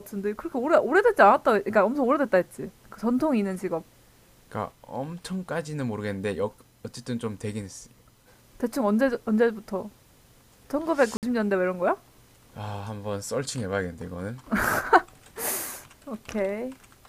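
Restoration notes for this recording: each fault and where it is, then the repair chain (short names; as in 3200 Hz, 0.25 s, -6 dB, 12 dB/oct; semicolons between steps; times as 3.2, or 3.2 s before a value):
11.17–11.23 gap 58 ms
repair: interpolate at 11.17, 58 ms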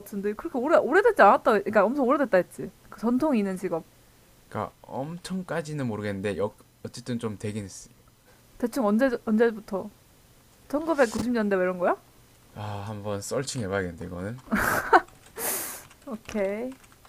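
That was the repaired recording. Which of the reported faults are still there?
none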